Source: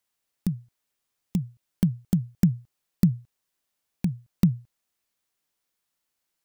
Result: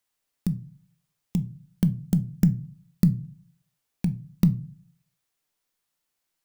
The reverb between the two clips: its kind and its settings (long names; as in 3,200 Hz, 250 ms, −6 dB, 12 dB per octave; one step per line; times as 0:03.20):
rectangular room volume 200 cubic metres, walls furnished, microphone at 0.43 metres